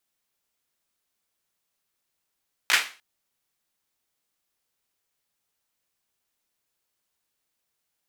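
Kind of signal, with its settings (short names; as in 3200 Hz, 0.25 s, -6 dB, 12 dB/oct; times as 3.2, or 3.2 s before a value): hand clap length 0.30 s, bursts 3, apart 16 ms, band 2100 Hz, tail 0.35 s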